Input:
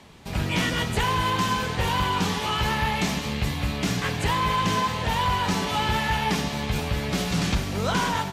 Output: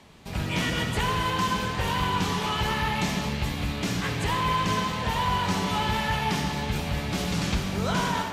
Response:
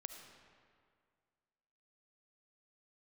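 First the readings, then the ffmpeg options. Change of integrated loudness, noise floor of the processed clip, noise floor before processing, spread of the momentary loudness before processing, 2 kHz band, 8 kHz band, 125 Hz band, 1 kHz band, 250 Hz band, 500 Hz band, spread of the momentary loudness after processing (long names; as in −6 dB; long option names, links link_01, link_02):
−2.0 dB, −32 dBFS, −31 dBFS, 4 LU, −2.0 dB, −2.5 dB, −1.5 dB, −2.0 dB, −1.5 dB, −2.0 dB, 4 LU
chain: -filter_complex "[1:a]atrim=start_sample=2205,asetrate=42336,aresample=44100[link_01];[0:a][link_01]afir=irnorm=-1:irlink=0,volume=2dB"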